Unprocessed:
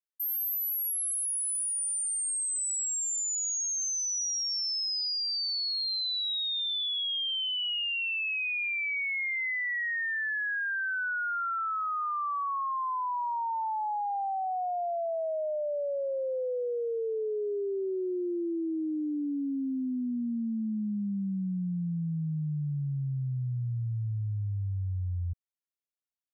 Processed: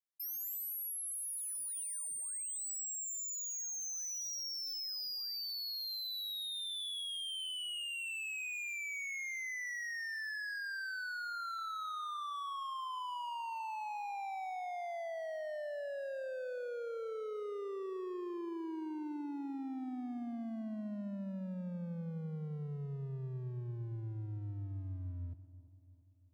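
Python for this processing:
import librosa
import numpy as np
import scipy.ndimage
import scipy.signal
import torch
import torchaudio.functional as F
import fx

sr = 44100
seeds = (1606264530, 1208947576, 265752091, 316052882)

y = scipy.signal.sosfilt(scipy.signal.butter(4, 81.0, 'highpass', fs=sr, output='sos'), x)
y = np.clip(10.0 ** (34.0 / 20.0) * y, -1.0, 1.0) / 10.0 ** (34.0 / 20.0)
y = fx.echo_split(y, sr, split_hz=990.0, low_ms=340, high_ms=131, feedback_pct=52, wet_db=-15.0)
y = y * 10.0 ** (-6.0 / 20.0)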